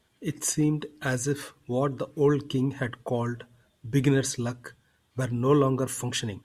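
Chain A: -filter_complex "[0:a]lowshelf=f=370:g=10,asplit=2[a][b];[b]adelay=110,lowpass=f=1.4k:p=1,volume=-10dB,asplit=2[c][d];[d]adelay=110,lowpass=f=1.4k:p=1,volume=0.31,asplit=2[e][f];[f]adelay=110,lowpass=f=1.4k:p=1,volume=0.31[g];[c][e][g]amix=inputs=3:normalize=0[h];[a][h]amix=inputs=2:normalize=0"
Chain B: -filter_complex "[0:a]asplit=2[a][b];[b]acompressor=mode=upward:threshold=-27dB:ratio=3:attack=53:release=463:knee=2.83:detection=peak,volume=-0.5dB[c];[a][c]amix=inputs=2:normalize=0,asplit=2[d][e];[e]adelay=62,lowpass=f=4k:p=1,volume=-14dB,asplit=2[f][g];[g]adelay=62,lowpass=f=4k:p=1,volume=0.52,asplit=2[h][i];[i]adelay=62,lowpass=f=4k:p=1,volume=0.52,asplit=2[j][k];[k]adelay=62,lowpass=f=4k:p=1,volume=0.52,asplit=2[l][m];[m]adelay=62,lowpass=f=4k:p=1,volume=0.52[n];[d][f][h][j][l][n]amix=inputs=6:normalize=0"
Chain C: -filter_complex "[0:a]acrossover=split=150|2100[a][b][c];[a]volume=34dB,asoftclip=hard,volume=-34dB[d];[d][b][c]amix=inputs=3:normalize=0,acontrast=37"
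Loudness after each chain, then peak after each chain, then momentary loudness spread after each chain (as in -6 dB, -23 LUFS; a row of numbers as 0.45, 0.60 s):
-21.0, -21.5, -22.5 LUFS; -4.0, -4.0, -6.0 dBFS; 12, 11, 11 LU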